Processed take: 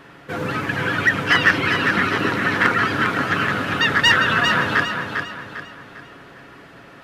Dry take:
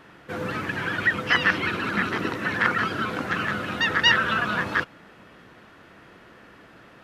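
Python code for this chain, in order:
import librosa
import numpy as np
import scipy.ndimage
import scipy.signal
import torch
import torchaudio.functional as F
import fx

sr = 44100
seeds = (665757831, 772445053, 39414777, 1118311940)

p1 = x + 0.33 * np.pad(x, (int(7.2 * sr / 1000.0), 0))[:len(x)]
p2 = 10.0 ** (-15.0 / 20.0) * (np.abs((p1 / 10.0 ** (-15.0 / 20.0) + 3.0) % 4.0 - 2.0) - 1.0)
p3 = p1 + (p2 * librosa.db_to_amplitude(-10.5))
p4 = fx.echo_feedback(p3, sr, ms=400, feedback_pct=39, wet_db=-6.0)
y = p4 * librosa.db_to_amplitude(2.5)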